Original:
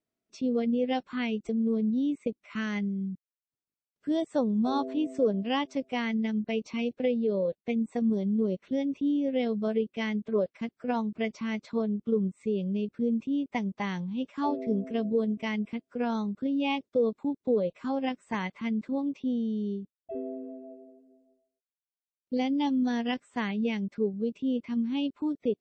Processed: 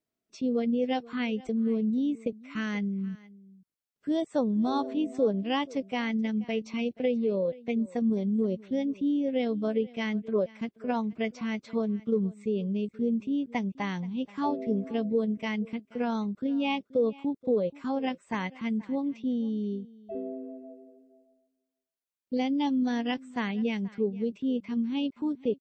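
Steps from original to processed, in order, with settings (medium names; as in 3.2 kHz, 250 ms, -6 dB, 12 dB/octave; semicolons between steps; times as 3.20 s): delay 479 ms -21.5 dB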